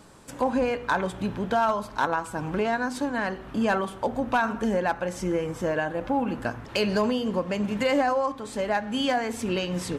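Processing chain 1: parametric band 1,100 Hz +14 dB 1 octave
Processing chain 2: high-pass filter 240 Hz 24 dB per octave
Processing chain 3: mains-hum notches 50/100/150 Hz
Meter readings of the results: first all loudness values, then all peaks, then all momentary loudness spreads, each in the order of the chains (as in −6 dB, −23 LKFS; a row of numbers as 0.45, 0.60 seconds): −20.5, −27.5, −27.0 LKFS; −2.5, −11.0, −14.5 dBFS; 9, 6, 5 LU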